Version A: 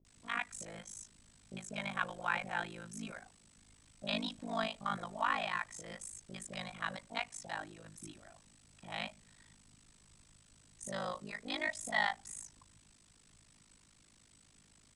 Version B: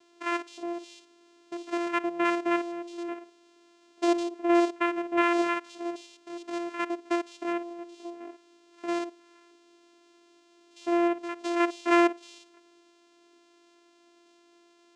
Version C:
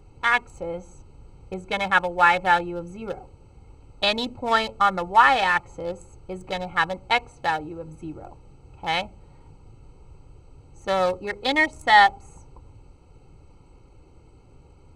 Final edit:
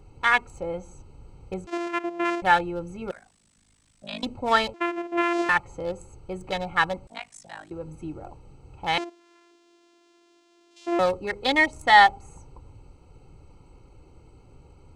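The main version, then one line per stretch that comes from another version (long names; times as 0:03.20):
C
0:01.67–0:02.42: punch in from B
0:03.11–0:04.23: punch in from A
0:04.74–0:05.49: punch in from B
0:07.07–0:07.71: punch in from A
0:08.98–0:10.99: punch in from B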